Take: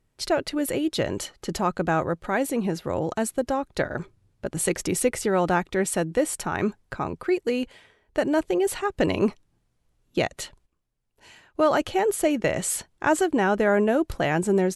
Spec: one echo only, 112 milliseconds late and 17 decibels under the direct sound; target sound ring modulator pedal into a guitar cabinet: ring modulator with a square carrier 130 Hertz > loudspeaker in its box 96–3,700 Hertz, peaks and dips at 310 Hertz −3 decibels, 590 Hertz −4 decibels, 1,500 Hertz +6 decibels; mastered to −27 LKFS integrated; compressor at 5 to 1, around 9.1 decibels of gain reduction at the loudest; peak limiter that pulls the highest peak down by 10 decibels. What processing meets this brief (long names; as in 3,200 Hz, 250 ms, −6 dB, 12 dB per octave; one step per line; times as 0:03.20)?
downward compressor 5 to 1, threshold −27 dBFS
brickwall limiter −24 dBFS
single-tap delay 112 ms −17 dB
ring modulator with a square carrier 130 Hz
loudspeaker in its box 96–3,700 Hz, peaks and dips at 310 Hz −3 dB, 590 Hz −4 dB, 1,500 Hz +6 dB
level +9 dB